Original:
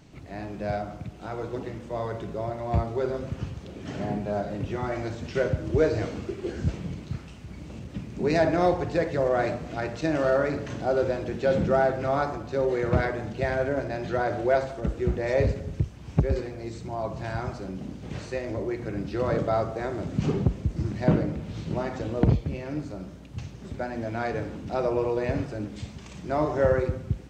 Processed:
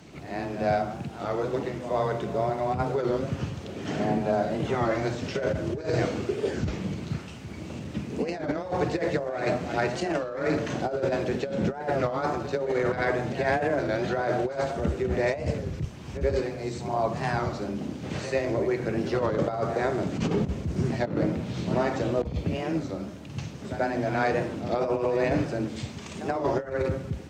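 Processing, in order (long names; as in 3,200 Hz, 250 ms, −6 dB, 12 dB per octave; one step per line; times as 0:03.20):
low-shelf EQ 160 Hz −6 dB
compressor whose output falls as the input rises −28 dBFS, ratio −0.5
frequency shifter +15 Hz
on a send: backwards echo 87 ms −11.5 dB
on the sum: wow of a warped record 33 1/3 rpm, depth 160 cents
level +3 dB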